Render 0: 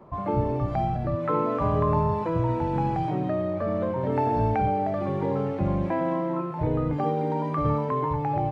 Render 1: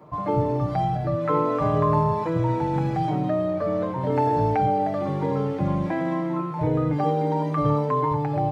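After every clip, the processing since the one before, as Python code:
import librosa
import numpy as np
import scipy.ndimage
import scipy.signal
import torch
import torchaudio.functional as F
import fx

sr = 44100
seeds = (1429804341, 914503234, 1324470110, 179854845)

y = scipy.signal.sosfilt(scipy.signal.butter(2, 58.0, 'highpass', fs=sr, output='sos'), x)
y = fx.high_shelf(y, sr, hz=3400.0, db=7.5)
y = y + 0.57 * np.pad(y, (int(6.6 * sr / 1000.0), 0))[:len(y)]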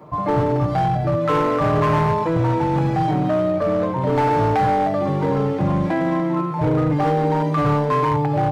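y = np.clip(x, -10.0 ** (-19.5 / 20.0), 10.0 ** (-19.5 / 20.0))
y = y * 10.0 ** (5.5 / 20.0)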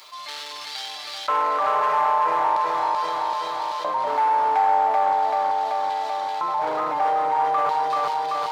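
y = fx.filter_lfo_highpass(x, sr, shape='square', hz=0.39, low_hz=850.0, high_hz=4000.0, q=2.4)
y = fx.echo_feedback(y, sr, ms=384, feedback_pct=59, wet_db=-3)
y = fx.env_flatten(y, sr, amount_pct=50)
y = y * 10.0 ** (-8.5 / 20.0)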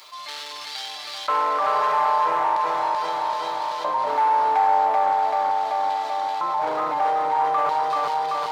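y = x + 10.0 ** (-12.0 / 20.0) * np.pad(x, (int(1012 * sr / 1000.0), 0))[:len(x)]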